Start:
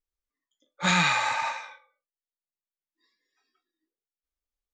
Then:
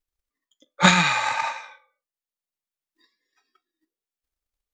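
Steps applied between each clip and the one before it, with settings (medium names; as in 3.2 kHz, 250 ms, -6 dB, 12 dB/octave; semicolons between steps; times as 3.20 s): transient shaper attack +11 dB, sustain -2 dB; trim +2 dB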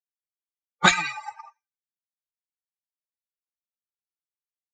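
expander on every frequency bin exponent 3; comb 2.6 ms, depth 54%; three bands expanded up and down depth 40%; trim -2 dB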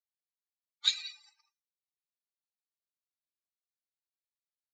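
ladder band-pass 4.5 kHz, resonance 65%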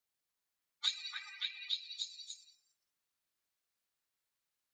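repeats whose band climbs or falls 285 ms, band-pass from 1.4 kHz, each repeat 0.7 oct, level -0.5 dB; compression 2.5:1, threshold -46 dBFS, peak gain reduction 16 dB; trim +7 dB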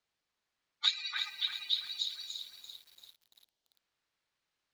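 time-frequency box 1.29–3.75 s, 970–2800 Hz -8 dB; low-pass 4.8 kHz 12 dB/octave; bit-crushed delay 340 ms, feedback 55%, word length 10-bit, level -8 dB; trim +7 dB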